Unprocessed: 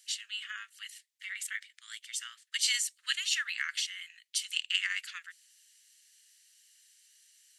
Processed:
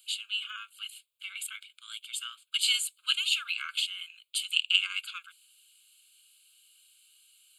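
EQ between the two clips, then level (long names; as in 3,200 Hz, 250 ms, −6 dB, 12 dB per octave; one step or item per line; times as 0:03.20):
Butterworth band-reject 1,900 Hz, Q 3.1
phaser with its sweep stopped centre 1,200 Hz, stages 8
+6.5 dB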